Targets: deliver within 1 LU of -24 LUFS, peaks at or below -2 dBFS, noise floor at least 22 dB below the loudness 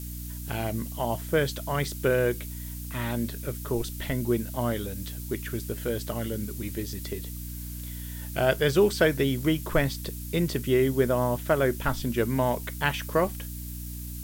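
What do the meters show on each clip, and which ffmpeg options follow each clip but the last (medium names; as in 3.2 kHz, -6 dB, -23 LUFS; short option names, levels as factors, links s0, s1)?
hum 60 Hz; highest harmonic 300 Hz; hum level -35 dBFS; noise floor -37 dBFS; noise floor target -51 dBFS; loudness -28.5 LUFS; peak level -9.0 dBFS; loudness target -24.0 LUFS
-> -af "bandreject=f=60:t=h:w=6,bandreject=f=120:t=h:w=6,bandreject=f=180:t=h:w=6,bandreject=f=240:t=h:w=6,bandreject=f=300:t=h:w=6"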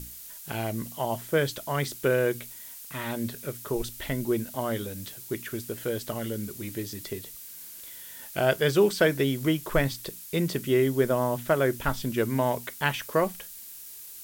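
hum not found; noise floor -44 dBFS; noise floor target -50 dBFS
-> -af "afftdn=nr=6:nf=-44"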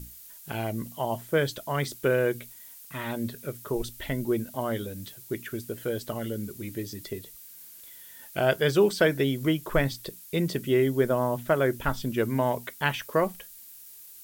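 noise floor -48 dBFS; noise floor target -51 dBFS
-> -af "afftdn=nr=6:nf=-48"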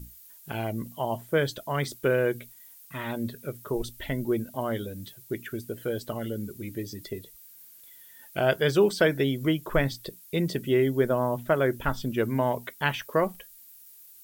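noise floor -51 dBFS; loudness -28.5 LUFS; peak level -10.0 dBFS; loudness target -24.0 LUFS
-> -af "volume=1.68"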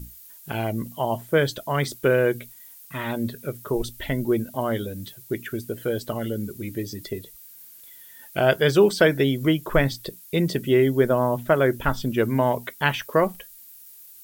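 loudness -24.0 LUFS; peak level -5.5 dBFS; noise floor -47 dBFS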